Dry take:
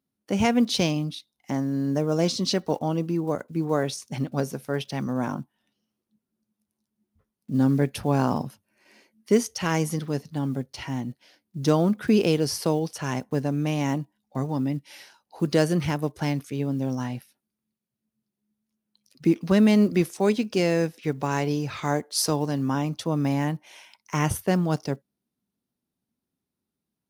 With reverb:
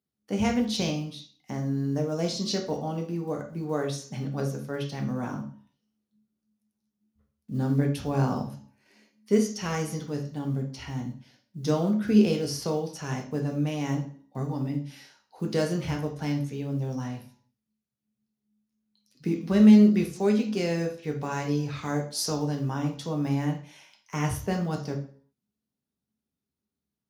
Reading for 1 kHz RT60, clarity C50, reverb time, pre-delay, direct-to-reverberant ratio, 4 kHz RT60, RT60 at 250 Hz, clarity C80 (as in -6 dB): 0.50 s, 8.5 dB, 0.50 s, 3 ms, 2.0 dB, 0.40 s, 0.50 s, 13.5 dB